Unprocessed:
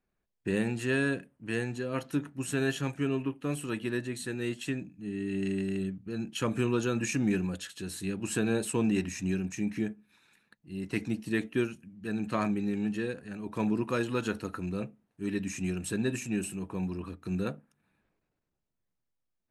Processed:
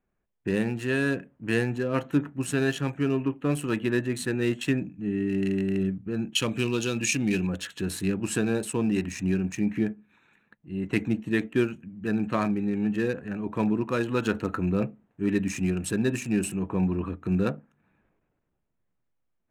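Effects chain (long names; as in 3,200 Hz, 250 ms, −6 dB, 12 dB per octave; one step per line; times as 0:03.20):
adaptive Wiener filter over 9 samples
0:06.35–0:07.47: high shelf with overshoot 2,100 Hz +8 dB, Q 1.5
speech leveller within 4 dB 0.5 s
level +5 dB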